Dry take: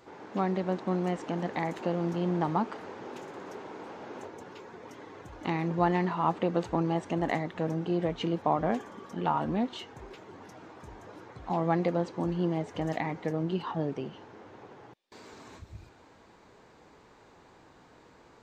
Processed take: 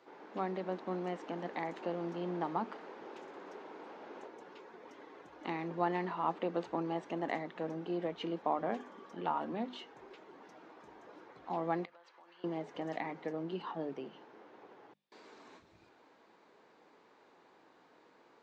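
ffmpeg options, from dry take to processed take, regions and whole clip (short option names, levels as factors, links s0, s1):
-filter_complex "[0:a]asettb=1/sr,asplit=3[s0][s1][s2];[s0]atrim=end=11.854[s3];[s1]atrim=start=11.85:end=12.44,asetpts=PTS-STARTPTS,afade=t=in:d=0.004:c=qsin,afade=t=out:st=0.586:d=0.004:c=qsin,highpass=1400,highshelf=f=4400:g=-11,acompressor=threshold=0.00398:ratio=10:attack=3.2:release=140:knee=1:detection=peak[s4];[s2]atrim=start=12.436[s5];[s3][s4]acrossfade=d=0.004:c1=hsin:c2=qsin[s6];[s6][s5]acrossfade=d=0.004:c1=qsin:c2=hsin,acrossover=split=190 5700:gain=0.0708 1 0.2[s7][s8][s9];[s7][s8][s9]amix=inputs=3:normalize=0,bandreject=f=50:t=h:w=6,bandreject=f=100:t=h:w=6,bandreject=f=150:t=h:w=6,bandreject=f=200:t=h:w=6,bandreject=f=250:t=h:w=6,volume=0.501"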